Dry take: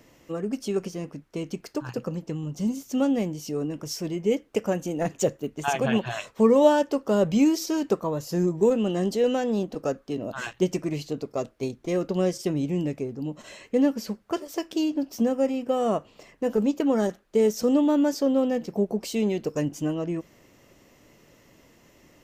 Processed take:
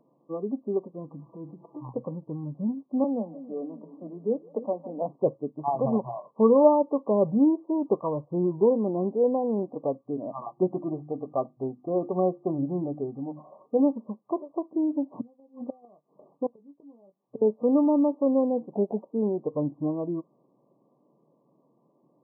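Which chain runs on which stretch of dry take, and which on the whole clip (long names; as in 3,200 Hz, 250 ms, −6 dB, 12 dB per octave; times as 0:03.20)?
0:01.11–0:01.82: converter with a step at zero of −43 dBFS + downward compressor, threshold −36 dBFS + comb filter 6 ms, depth 83%
0:03.04–0:05.09: running median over 25 samples + Chebyshev high-pass with heavy ripple 160 Hz, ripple 6 dB + echo with a time of its own for lows and highs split 510 Hz, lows 296 ms, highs 156 ms, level −13 dB
0:10.35–0:13.80: mains-hum notches 50/100/150/200/250/300/350 Hz + hollow resonant body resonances 750/1,200 Hz, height 8 dB, ringing for 25 ms
0:15.12–0:17.42: double-tracking delay 21 ms −7 dB + sample-and-hold swept by an LFO 14×, swing 60% 2 Hz + gate with flip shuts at −18 dBFS, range −27 dB
whole clip: brick-wall band-pass 120–1,200 Hz; noise reduction from a noise print of the clip's start 8 dB; dynamic equaliser 180 Hz, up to −4 dB, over −41 dBFS, Q 2.4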